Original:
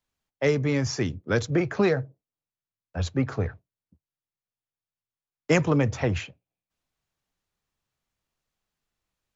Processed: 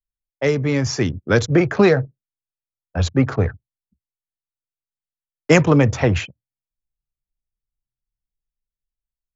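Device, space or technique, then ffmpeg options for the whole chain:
voice memo with heavy noise removal: -af "anlmdn=0.251,dynaudnorm=f=210:g=9:m=5dB,volume=3.5dB"

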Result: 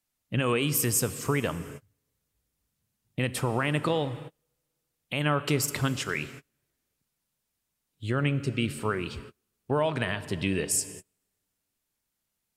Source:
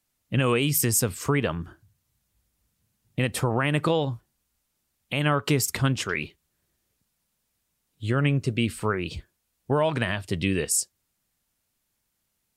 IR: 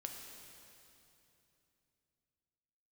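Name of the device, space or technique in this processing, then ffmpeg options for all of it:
keyed gated reverb: -filter_complex "[0:a]equalizer=f=62:t=o:w=2.8:g=-2.5,asplit=3[a][b][c];[1:a]atrim=start_sample=2205[d];[b][d]afir=irnorm=-1:irlink=0[e];[c]apad=whole_len=554100[f];[e][f]sidechaingate=range=-35dB:threshold=-48dB:ratio=16:detection=peak,volume=-4dB[g];[a][g]amix=inputs=2:normalize=0,volume=-5.5dB"

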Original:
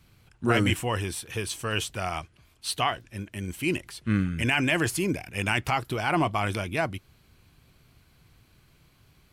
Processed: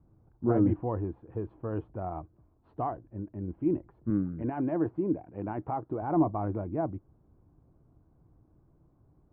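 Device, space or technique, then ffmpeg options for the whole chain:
under water: -filter_complex "[0:a]asettb=1/sr,asplit=3[a][b][c];[a]atrim=end=4.104[d];[b]atrim=start=4.1:end=6.02,asetpts=PTS-STARTPTS,afade=t=in:d=0.004:c=qsin,afade=t=out:st=1.916:d=0.004:c=qsin,highpass=f=180:p=1[e];[c]atrim=start=6.016[f];[d][e]acrossfade=d=0.004:c1=hsin:c2=qsin[g];[g][f]acrossfade=d=0.004:c1=qsin:c2=hsin,lowpass=f=920:w=0.5412,lowpass=f=920:w=1.3066,equalizer=f=310:t=o:w=0.28:g=8,volume=-3dB"

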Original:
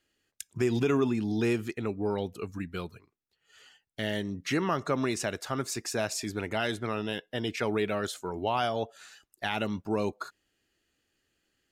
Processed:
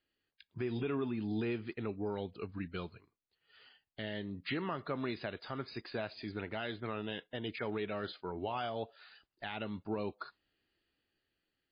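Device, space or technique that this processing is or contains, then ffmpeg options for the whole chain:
low-bitrate web radio: -af "dynaudnorm=f=230:g=7:m=4dB,alimiter=limit=-18dB:level=0:latency=1:release=435,volume=-8dB" -ar 11025 -c:a libmp3lame -b:a 24k

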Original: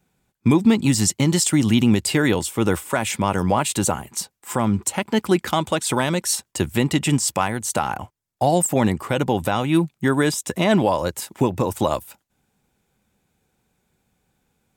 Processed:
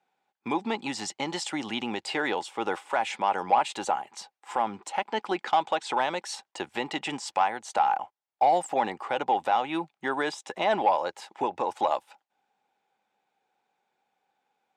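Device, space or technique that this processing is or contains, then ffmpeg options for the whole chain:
intercom: -filter_complex "[0:a]highpass=490,lowpass=4.4k,equalizer=f=810:t=o:w=0.3:g=11,asoftclip=type=tanh:threshold=-6.5dB,highshelf=f=9.5k:g=-5,asettb=1/sr,asplit=3[a][b][c];[a]atrim=end=5.254[d];[b]atrim=start=5.25:end=6.09,asetpts=PTS-STARTPTS,afade=t=in:d=0.004:c=qsin,afade=t=out:st=0.836:d=0.004:c=qsin,lowpass=9.6k[e];[c]atrim=start=6.086[f];[d][e]acrossfade=d=0.004:c1=hsin:c2=qsin[g];[g][f]acrossfade=d=0.004:c1=qsin:c2=hsin,volume=-5dB"

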